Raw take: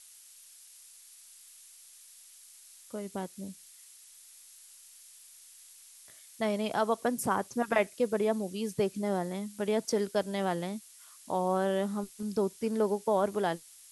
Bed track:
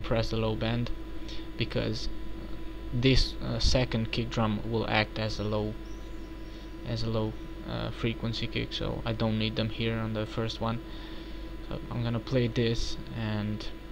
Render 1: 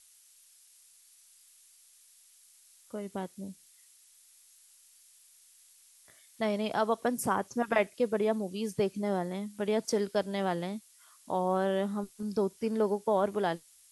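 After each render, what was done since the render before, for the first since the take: noise print and reduce 6 dB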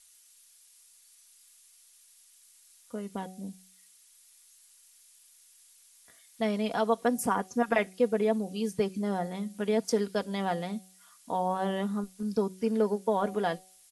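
comb 4.2 ms, depth 51%; de-hum 186.8 Hz, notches 4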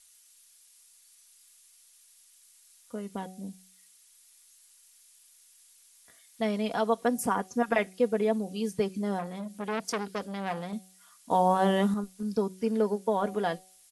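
9.19–10.73 s: transformer saturation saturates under 1.7 kHz; 11.31–11.94 s: gain +6 dB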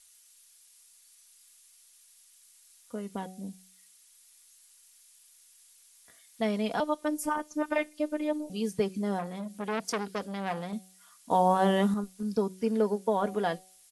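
6.80–8.50 s: robot voice 302 Hz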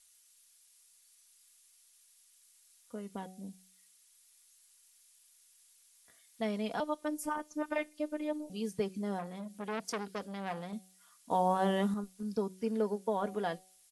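trim -5.5 dB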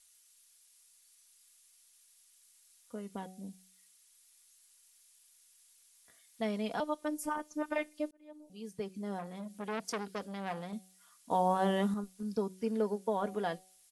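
8.11–9.46 s: fade in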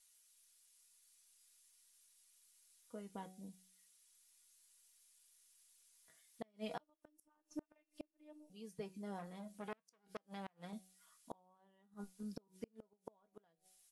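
feedback comb 160 Hz, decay 0.17 s, harmonics all, mix 70%; inverted gate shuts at -32 dBFS, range -35 dB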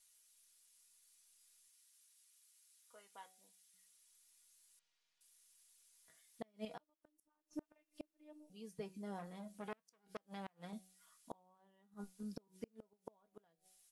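1.68–3.74 s: high-pass 1 kHz; 4.79–5.21 s: distance through air 210 m; 6.65–7.53 s: gain -6.5 dB

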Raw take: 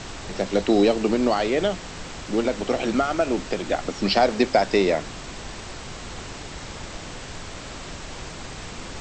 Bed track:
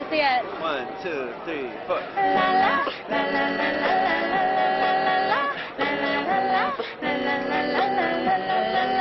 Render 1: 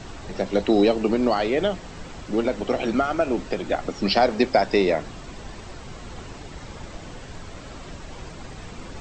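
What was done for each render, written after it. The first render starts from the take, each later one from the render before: noise reduction 8 dB, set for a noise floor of -37 dBFS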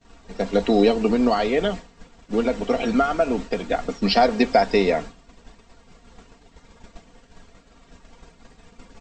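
expander -27 dBFS; comb 4.3 ms, depth 56%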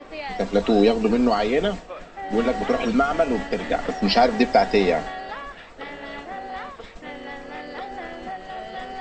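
add bed track -11.5 dB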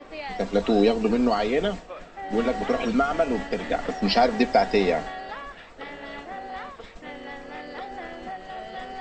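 trim -2.5 dB

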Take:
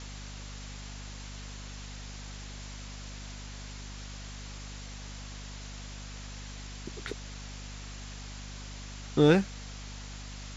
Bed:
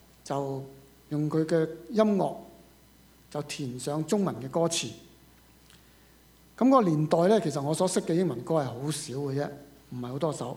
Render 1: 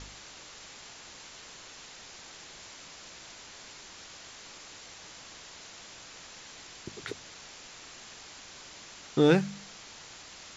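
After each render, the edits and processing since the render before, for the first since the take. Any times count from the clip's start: de-hum 50 Hz, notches 5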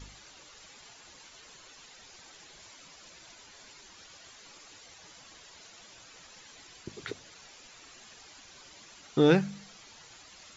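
noise reduction 10 dB, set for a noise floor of -49 dBFS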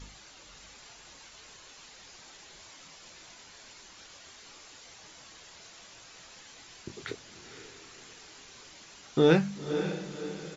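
doubling 25 ms -9 dB; on a send: echo that smears into a reverb 523 ms, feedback 45%, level -9 dB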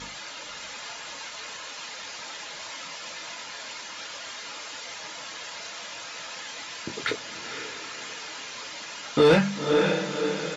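overdrive pedal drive 24 dB, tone 3.1 kHz, clips at -7.5 dBFS; comb of notches 380 Hz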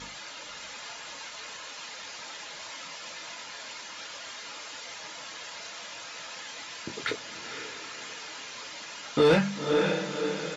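trim -3 dB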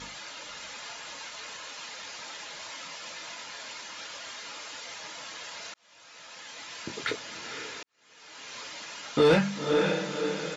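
5.74–6.83 s: fade in; 7.83–8.55 s: fade in quadratic

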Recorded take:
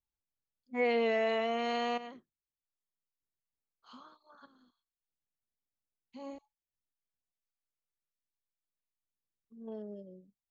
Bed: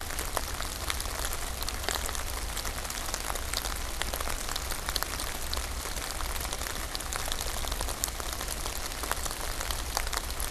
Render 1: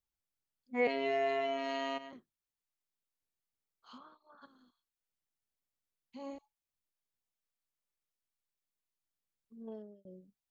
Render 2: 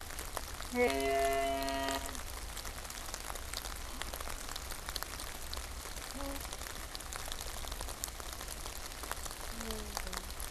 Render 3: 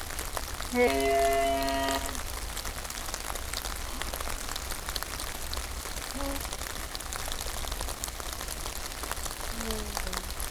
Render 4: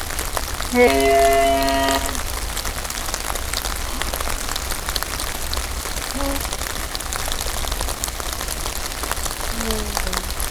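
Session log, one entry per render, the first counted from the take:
0.87–2.13 s: robot voice 136 Hz; 3.98–4.42 s: distance through air 260 m; 9.61–10.05 s: fade out
add bed -9 dB
upward compressor, threshold -42 dBFS; waveshaping leveller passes 2
trim +10.5 dB

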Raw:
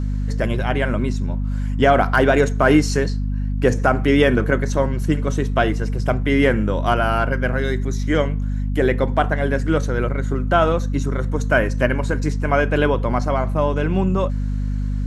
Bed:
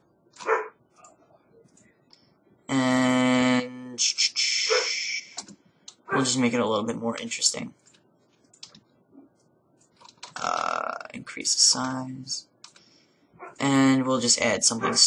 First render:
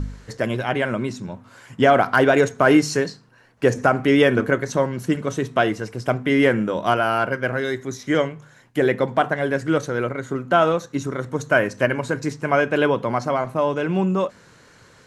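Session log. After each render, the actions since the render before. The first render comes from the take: de-hum 50 Hz, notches 5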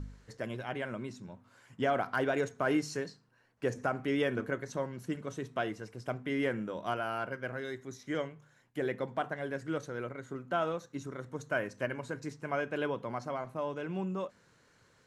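trim -15 dB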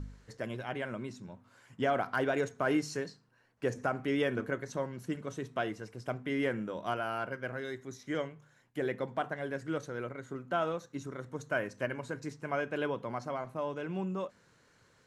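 no audible change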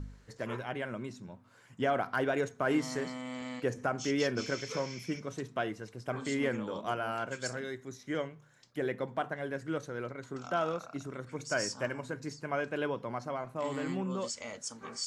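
add bed -19.5 dB

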